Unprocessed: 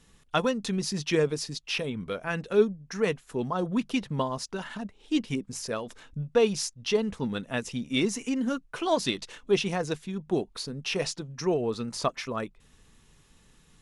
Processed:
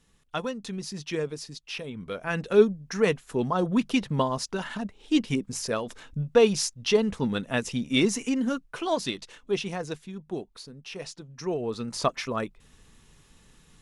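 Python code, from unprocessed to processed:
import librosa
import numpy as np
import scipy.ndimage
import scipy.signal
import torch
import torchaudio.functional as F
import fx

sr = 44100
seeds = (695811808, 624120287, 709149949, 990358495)

y = fx.gain(x, sr, db=fx.line((1.85, -5.5), (2.44, 3.5), (8.13, 3.5), (9.27, -3.5), (9.94, -3.5), (10.89, -10.0), (12.07, 2.5)))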